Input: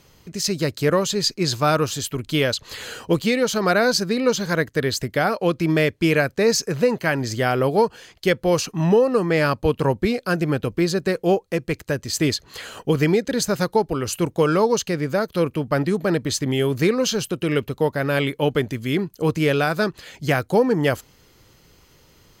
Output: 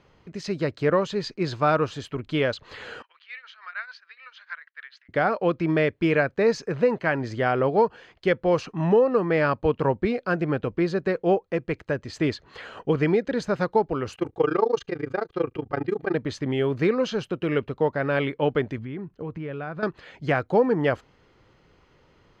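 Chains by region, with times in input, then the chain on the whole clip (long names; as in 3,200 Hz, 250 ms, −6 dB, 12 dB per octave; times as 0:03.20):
0:03.02–0:05.09: shaped tremolo triangle 6.8 Hz, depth 90% + high-pass filter 1,500 Hz 24 dB per octave + high-frequency loss of the air 280 metres
0:14.15–0:16.15: amplitude modulation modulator 27 Hz, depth 95% + comb filter 2.5 ms, depth 56%
0:18.78–0:19.83: bass and treble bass +6 dB, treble −14 dB + downward compressor 4 to 1, threshold −28 dBFS
whole clip: Bessel low-pass filter 1,800 Hz, order 2; low-shelf EQ 320 Hz −6 dB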